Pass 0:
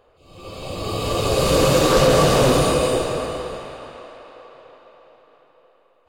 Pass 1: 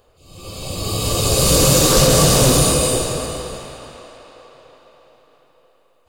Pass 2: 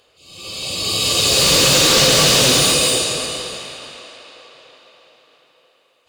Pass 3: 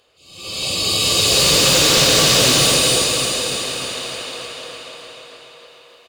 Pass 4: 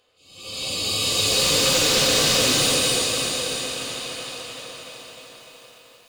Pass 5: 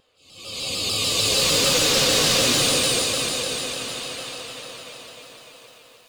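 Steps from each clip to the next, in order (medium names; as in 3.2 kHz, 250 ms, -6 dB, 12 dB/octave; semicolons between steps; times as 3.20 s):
tone controls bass +7 dB, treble +15 dB; trim -1.5 dB
frequency weighting D; slew-rate limiter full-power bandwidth 1.7 kHz; trim -2 dB
level rider gain up to 11 dB; on a send: feedback delay 299 ms, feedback 59%, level -6.5 dB; on the sum: trim -2.5 dB
reverberation RT60 0.25 s, pre-delay 4 ms, DRR 6.5 dB; bit-crushed delay 681 ms, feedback 55%, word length 6-bit, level -14.5 dB; trim -6.5 dB
vibrato with a chosen wave saw down 6.7 Hz, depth 100 cents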